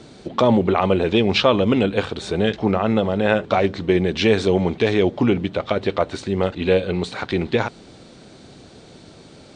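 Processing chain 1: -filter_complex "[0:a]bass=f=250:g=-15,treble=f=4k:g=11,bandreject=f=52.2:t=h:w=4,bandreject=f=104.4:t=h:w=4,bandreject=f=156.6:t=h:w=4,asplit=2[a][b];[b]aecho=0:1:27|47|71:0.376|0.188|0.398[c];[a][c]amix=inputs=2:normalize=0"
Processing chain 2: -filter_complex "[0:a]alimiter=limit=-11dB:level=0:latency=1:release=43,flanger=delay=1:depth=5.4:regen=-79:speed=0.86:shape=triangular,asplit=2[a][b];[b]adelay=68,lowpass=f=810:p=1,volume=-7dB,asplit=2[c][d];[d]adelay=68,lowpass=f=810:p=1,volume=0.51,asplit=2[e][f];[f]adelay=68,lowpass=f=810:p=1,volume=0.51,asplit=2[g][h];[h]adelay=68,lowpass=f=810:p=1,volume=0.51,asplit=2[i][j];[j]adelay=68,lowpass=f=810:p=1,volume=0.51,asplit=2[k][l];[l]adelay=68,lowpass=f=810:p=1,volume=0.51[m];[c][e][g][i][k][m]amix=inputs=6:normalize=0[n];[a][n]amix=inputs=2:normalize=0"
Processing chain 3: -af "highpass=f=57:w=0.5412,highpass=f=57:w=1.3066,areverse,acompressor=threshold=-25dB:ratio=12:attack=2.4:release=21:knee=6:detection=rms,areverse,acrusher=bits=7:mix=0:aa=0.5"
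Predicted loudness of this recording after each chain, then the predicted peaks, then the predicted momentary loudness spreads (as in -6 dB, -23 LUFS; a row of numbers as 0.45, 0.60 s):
-20.5, -27.0, -30.0 LUFS; -1.5, -11.5, -16.5 dBFS; 8, 5, 16 LU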